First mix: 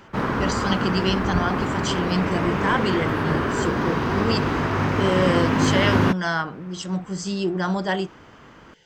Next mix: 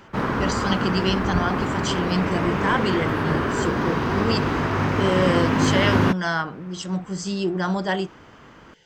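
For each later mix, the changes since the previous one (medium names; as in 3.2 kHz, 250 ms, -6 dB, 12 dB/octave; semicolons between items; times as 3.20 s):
no change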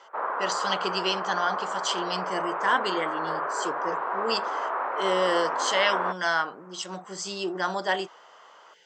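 background: add Butterworth band-pass 850 Hz, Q 1; master: add high-pass 470 Hz 12 dB/octave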